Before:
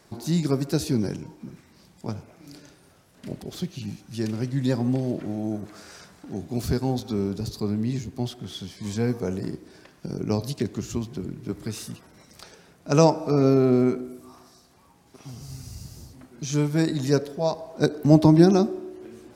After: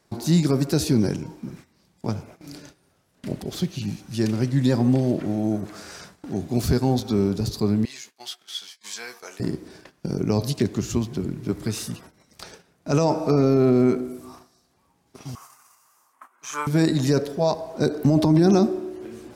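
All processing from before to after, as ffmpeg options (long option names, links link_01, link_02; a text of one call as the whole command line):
ffmpeg -i in.wav -filter_complex "[0:a]asettb=1/sr,asplit=3[link_01][link_02][link_03];[link_01]atrim=end=7.854[link_04];[link_02]atrim=start=7.85:end=9.4,asetpts=PTS-STARTPTS,afade=type=in:duration=0.004:curve=qsin,afade=type=out:start_time=1.546:duration=0.004:curve=qsin,agate=range=-33dB:threshold=-39dB:ratio=3:release=100:detection=peak,highpass=1400,asplit=2[link_05][link_06];[link_06]adelay=14,volume=-8.5dB[link_07];[link_05][link_07]amix=inputs=2:normalize=0,atrim=end_sample=68355[link_08];[link_03]atrim=start=9.396[link_09];[link_04][link_08]acrossfade=duration=0.004:curve1=hsin:curve2=qsin[link_10];[link_10][link_09]acrossfade=duration=0.004:curve1=qsin:curve2=hsin,asettb=1/sr,asplit=3[link_11][link_12][link_13];[link_11]atrim=end=15.354[link_14];[link_12]atrim=start=15.35:end=16.67,asetpts=PTS-STARTPTS,afade=type=in:duration=0.004:curve=qsin,afade=type=out:start_time=1.316:duration=0.004:curve=qsin,highpass=frequency=1100:width_type=q:width=5.6,equalizer=frequency=4400:width_type=o:width=0.89:gain=-14.5[link_15];[link_13]atrim=start=16.666[link_16];[link_14][link_15]acrossfade=duration=0.004:curve1=hsin:curve2=qsin[link_17];[link_17][link_16]acrossfade=duration=0.004:curve1=qsin:curve2=hsin,agate=range=-13dB:threshold=-49dB:ratio=16:detection=peak,alimiter=limit=-14.5dB:level=0:latency=1:release=15,volume=5dB" out.wav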